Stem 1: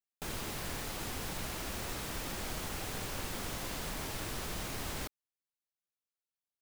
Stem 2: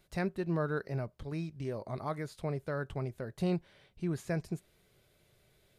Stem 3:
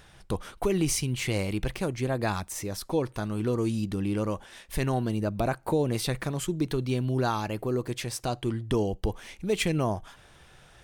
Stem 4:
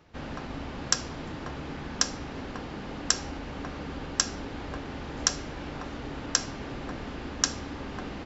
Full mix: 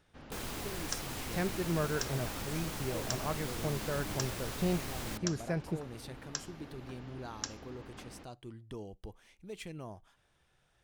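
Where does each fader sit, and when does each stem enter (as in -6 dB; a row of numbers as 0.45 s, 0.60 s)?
-1.5 dB, -0.5 dB, -18.0 dB, -13.5 dB; 0.10 s, 1.20 s, 0.00 s, 0.00 s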